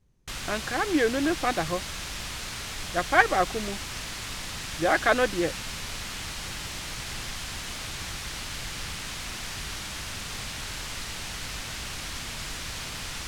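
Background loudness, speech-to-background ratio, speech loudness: -34.0 LUFS, 8.0 dB, -26.0 LUFS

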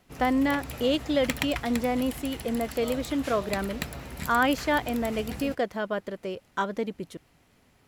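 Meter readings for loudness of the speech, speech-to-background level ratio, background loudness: -28.5 LUFS, 9.0 dB, -37.5 LUFS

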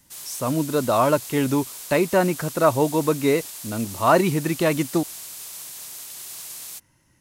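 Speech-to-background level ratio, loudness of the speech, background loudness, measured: 12.5 dB, -22.0 LUFS, -34.5 LUFS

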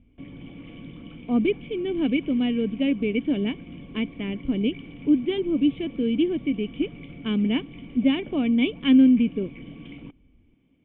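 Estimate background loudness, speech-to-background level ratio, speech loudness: -41.5 LUFS, 17.5 dB, -24.0 LUFS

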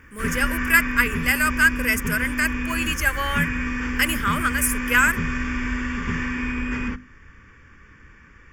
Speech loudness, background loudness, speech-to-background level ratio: -21.5 LUFS, -26.5 LUFS, 5.0 dB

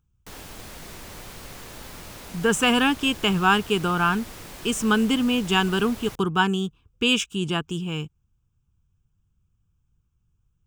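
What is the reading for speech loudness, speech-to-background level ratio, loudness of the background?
-23.0 LUFS, 17.0 dB, -40.0 LUFS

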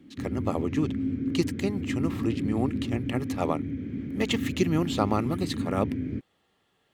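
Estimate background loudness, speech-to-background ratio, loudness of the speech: -32.0 LUFS, 1.5 dB, -30.5 LUFS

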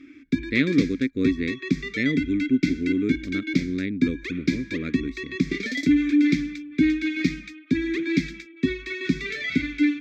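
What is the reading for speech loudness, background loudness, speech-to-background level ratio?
-26.5 LUFS, -26.0 LUFS, -0.5 dB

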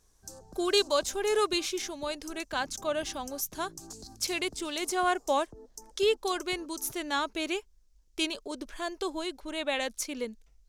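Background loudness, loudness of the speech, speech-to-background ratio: -48.5 LUFS, -31.5 LUFS, 17.0 dB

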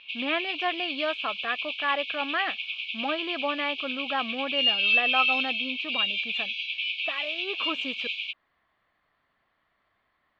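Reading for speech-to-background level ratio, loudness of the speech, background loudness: -4.0 dB, -31.5 LUFS, -27.5 LUFS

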